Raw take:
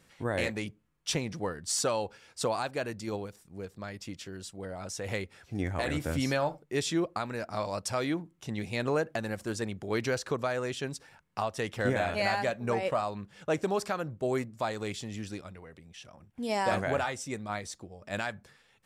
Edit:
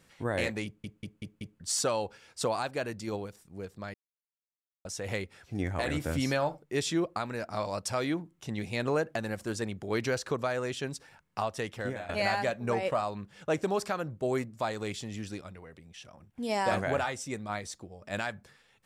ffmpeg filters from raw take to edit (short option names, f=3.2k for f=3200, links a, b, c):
-filter_complex "[0:a]asplit=9[a][b][c][d][e][f][g][h][i];[a]atrim=end=0.842[j];[b]atrim=start=0.648:end=0.842[k];[c]atrim=start=0.648:end=0.842[l];[d]atrim=start=0.648:end=0.842[m];[e]atrim=start=0.648:end=0.842[n];[f]atrim=start=1.598:end=3.94,asetpts=PTS-STARTPTS,afade=t=out:st=2.338:d=0.004:c=hsin[o];[g]atrim=start=3.94:end=4.85,asetpts=PTS-STARTPTS,volume=0[p];[h]atrim=start=4.85:end=12.09,asetpts=PTS-STARTPTS,afade=t=in:d=0.004:c=hsin,afade=t=out:st=6.66:d=0.58:silence=0.16788[q];[i]atrim=start=12.09,asetpts=PTS-STARTPTS,afade=t=in:d=0.004:c=hsin:silence=0.16788[r];[j][k]acrossfade=d=0.004:c1=hsin:c2=hsin[s];[s][l]acrossfade=d=0.004:c1=hsin:c2=hsin[t];[t][m]acrossfade=d=0.004:c1=hsin:c2=hsin[u];[u][n]acrossfade=d=0.004:c1=hsin:c2=hsin[v];[o][p][q][r]concat=n=4:v=0:a=1[w];[v][w]acrossfade=d=0.004:c1=hsin:c2=hsin"